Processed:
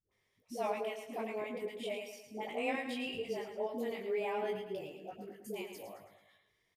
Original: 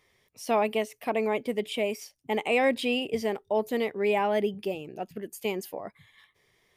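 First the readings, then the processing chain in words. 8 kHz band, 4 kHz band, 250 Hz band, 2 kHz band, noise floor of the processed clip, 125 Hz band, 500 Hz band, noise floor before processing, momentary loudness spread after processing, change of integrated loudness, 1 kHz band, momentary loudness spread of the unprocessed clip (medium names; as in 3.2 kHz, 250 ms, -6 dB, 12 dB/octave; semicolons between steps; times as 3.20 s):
-11.0 dB, -11.0 dB, -11.0 dB, -10.5 dB, -78 dBFS, -12.0 dB, -10.5 dB, -70 dBFS, 12 LU, -10.5 dB, -10.5 dB, 13 LU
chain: phase dispersion highs, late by 117 ms, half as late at 490 Hz; chorus 0.36 Hz, delay 19.5 ms, depth 2.3 ms; on a send: feedback delay 109 ms, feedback 46%, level -8 dB; on the sum: trim -8.5 dB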